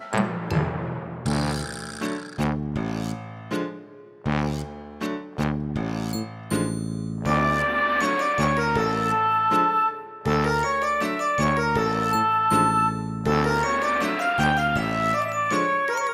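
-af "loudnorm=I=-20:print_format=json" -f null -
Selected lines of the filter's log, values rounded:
"input_i" : "-23.6",
"input_tp" : "-7.2",
"input_lra" : "7.0",
"input_thresh" : "-33.8",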